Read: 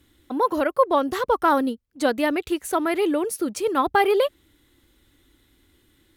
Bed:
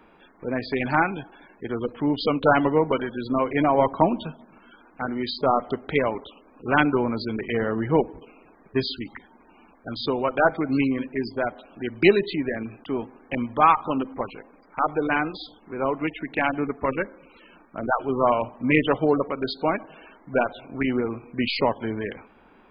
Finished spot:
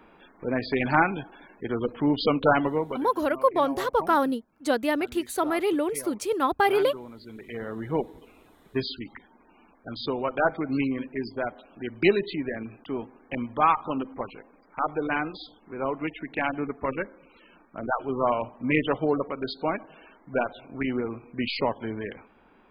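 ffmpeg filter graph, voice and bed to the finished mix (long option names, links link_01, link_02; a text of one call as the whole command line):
ffmpeg -i stem1.wav -i stem2.wav -filter_complex "[0:a]adelay=2650,volume=-3dB[link_01];[1:a]volume=14dB,afade=type=out:start_time=2.29:duration=0.82:silence=0.125893,afade=type=in:start_time=7.17:duration=1.22:silence=0.199526[link_02];[link_01][link_02]amix=inputs=2:normalize=0" out.wav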